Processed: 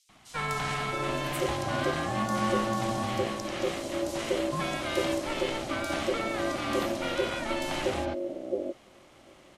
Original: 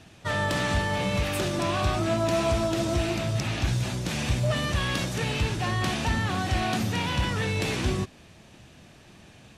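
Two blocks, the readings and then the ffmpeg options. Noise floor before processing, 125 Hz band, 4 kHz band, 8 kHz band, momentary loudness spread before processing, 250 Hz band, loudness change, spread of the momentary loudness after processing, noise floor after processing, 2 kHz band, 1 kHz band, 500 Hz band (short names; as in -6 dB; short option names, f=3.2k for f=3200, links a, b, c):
-52 dBFS, -11.5 dB, -4.5 dB, -4.5 dB, 3 LU, -2.5 dB, -3.5 dB, 5 LU, -56 dBFS, -3.5 dB, -1.0 dB, 0.0 dB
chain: -filter_complex "[0:a]acrossover=split=200|4500[a][b][c];[b]adelay=90[d];[a]adelay=670[e];[e][d][c]amix=inputs=3:normalize=0,aeval=exprs='val(0)*sin(2*PI*450*n/s)':c=same"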